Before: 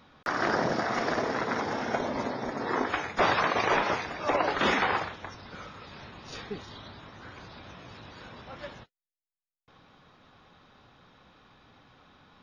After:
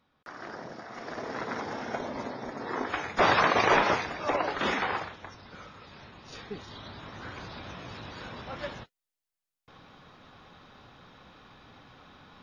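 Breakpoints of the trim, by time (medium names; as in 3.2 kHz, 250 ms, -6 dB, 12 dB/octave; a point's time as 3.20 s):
0.88 s -14.5 dB
1.40 s -4.5 dB
2.75 s -4.5 dB
3.36 s +3 dB
3.89 s +3 dB
4.51 s -3.5 dB
6.37 s -3.5 dB
7.16 s +4.5 dB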